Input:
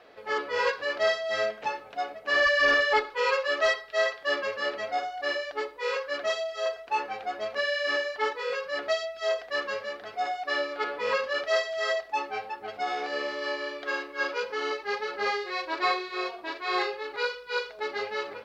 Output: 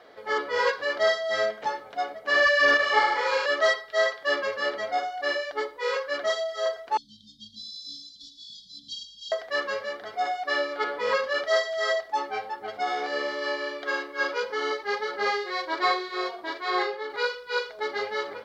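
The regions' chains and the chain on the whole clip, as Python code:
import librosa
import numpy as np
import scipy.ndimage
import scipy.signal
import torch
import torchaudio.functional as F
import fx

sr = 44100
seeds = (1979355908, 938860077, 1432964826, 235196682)

y = fx.chain(x, sr, fx.room_flutter(wall_m=5.8, rt60_s=1.3),
    fx.detune_double(cents=29), at=(2.77, 3.46))
y = fx.chain(y, sr, fx.brickwall_bandstop(low_hz=270.0, high_hz=3100.0),
    fx.air_absorb(metres=58.0),
    fx.echo_single(ms=116, db=-11.0), at=(6.97, 9.32))
y = fx.chain(y, sr, fx.highpass(hz=120.0, slope=12),
    fx.high_shelf(hz=4000.0, db=-6.0), at=(16.7, 17.1))
y = fx.low_shelf(y, sr, hz=88.0, db=-6.5)
y = fx.notch(y, sr, hz=2600.0, q=6.2)
y = y * 10.0 ** (2.5 / 20.0)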